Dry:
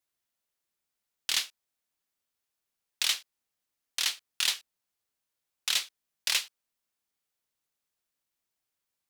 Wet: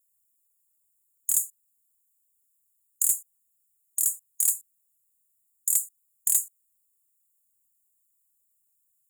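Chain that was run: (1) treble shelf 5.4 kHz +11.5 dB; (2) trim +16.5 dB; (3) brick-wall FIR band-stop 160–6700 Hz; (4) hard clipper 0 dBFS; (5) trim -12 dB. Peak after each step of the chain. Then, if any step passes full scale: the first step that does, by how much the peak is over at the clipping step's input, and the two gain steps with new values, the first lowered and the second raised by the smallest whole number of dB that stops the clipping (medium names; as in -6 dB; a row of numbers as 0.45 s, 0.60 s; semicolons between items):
-6.0 dBFS, +10.5 dBFS, +7.5 dBFS, 0.0 dBFS, -12.0 dBFS; step 2, 7.5 dB; step 2 +8.5 dB, step 5 -4 dB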